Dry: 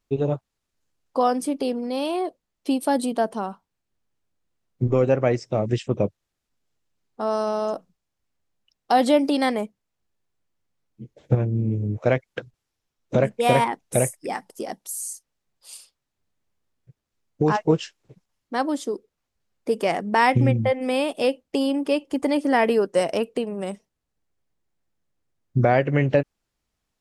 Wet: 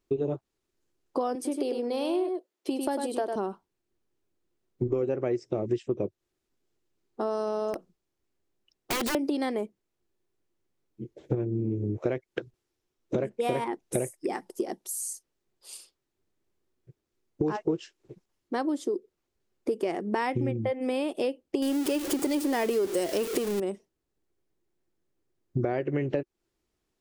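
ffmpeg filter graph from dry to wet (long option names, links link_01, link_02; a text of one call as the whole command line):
ffmpeg -i in.wav -filter_complex "[0:a]asettb=1/sr,asplit=3[link_01][link_02][link_03];[link_01]atrim=end=1.354[link_04];[link_02]atrim=start=1.35:end=3.36,asetpts=PTS-STARTPTS,afade=type=in:duration=0.004:curve=qsin,afade=type=out:start_time=2.006:duration=0.004:curve=qsin,highpass=350,aecho=1:1:100:0.501,atrim=end_sample=88641[link_05];[link_03]atrim=start=3.356[link_06];[link_04][link_05]acrossfade=duration=0.004:curve1=hsin:curve2=qsin[link_07];[link_07][link_06]acrossfade=duration=0.004:curve1=qsin:curve2=hsin,asettb=1/sr,asplit=3[link_08][link_09][link_10];[link_08]atrim=end=7.734[link_11];[link_09]atrim=start=7.73:end=9.15,asetpts=PTS-STARTPTS,afade=type=in:duration=0.004:curve=qsin,afade=type=out:start_time=1.416:duration=0.004:curve=qsin,acompressor=threshold=-19dB:ratio=8:attack=3.2:release=140:knee=1:detection=peak,aeval=exprs='(mod(10*val(0)+1,2)-1)/10':channel_layout=same[link_12];[link_10]atrim=start=9.146[link_13];[link_11][link_12]acrossfade=duration=0.004:curve1=hsin:curve2=qsin[link_14];[link_14][link_13]acrossfade=duration=0.004:curve1=qsin:curve2=hsin,asettb=1/sr,asplit=3[link_15][link_16][link_17];[link_15]atrim=end=21.624[link_18];[link_16]atrim=start=21.62:end=23.6,asetpts=PTS-STARTPTS,afade=type=in:duration=0.004:curve=qsin,afade=type=out:start_time=1.976:duration=0.004:curve=qsin,aeval=exprs='val(0)+0.5*0.0631*sgn(val(0))':channel_layout=same,highshelf=frequency=3800:gain=11.5[link_19];[link_17]atrim=start=23.596[link_20];[link_18][link_19]acrossfade=duration=0.004:curve1=hsin:curve2=qsin[link_21];[link_21][link_20]acrossfade=duration=0.004:curve1=qsin:curve2=hsin,equalizer=frequency=360:width=2.6:gain=14,acompressor=threshold=-24dB:ratio=4,volume=-2.5dB" out.wav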